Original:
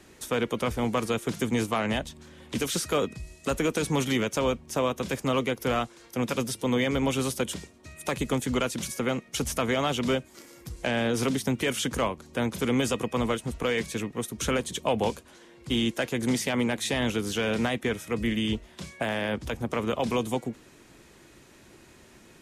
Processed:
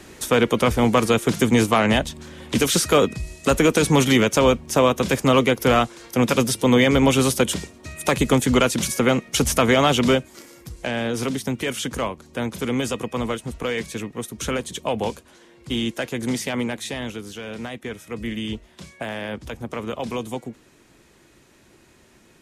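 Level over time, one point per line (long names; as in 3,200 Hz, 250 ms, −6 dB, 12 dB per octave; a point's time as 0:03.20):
0:09.99 +9.5 dB
0:10.76 +1.5 dB
0:16.58 +1.5 dB
0:17.41 −7 dB
0:18.34 −1 dB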